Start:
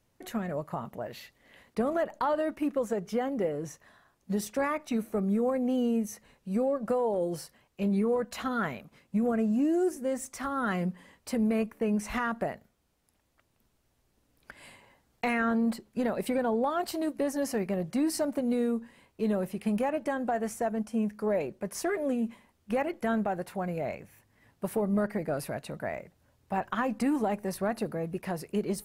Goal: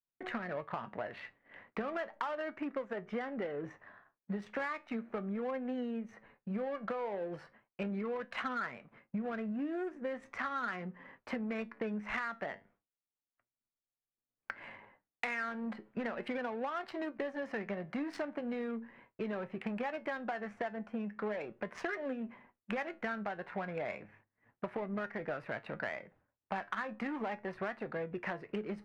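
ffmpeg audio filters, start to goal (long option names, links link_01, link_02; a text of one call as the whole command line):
ffmpeg -i in.wav -filter_complex "[0:a]acrossover=split=370[link_01][link_02];[link_02]adynamicsmooth=sensitivity=6:basefreq=1100[link_03];[link_01][link_03]amix=inputs=2:normalize=0,equalizer=frequency=60:width=1.1:gain=-9,flanger=delay=7.5:depth=3:regen=72:speed=0.36:shape=triangular,equalizer=frequency=1900:width=0.6:gain=14.5,agate=range=-33dB:threshold=-57dB:ratio=3:detection=peak,acompressor=threshold=-39dB:ratio=6,volume=3.5dB" out.wav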